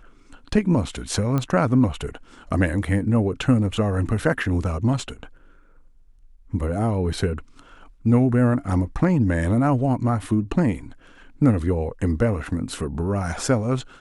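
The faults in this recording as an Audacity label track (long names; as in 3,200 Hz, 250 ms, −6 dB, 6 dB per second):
1.380000	1.380000	click −12 dBFS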